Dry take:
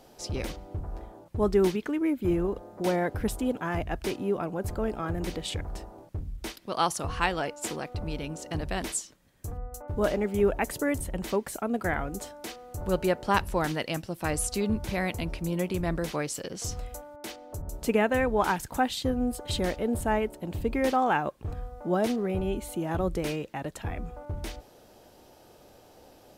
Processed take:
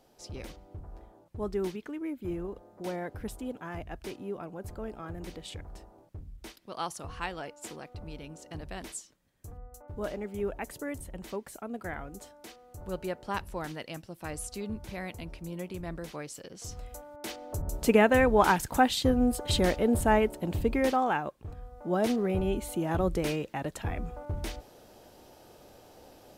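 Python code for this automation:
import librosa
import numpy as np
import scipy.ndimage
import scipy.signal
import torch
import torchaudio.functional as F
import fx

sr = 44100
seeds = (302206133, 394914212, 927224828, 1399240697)

y = fx.gain(x, sr, db=fx.line((16.57, -9.0), (17.44, 3.0), (20.5, 3.0), (21.57, -8.0), (22.12, 0.5)))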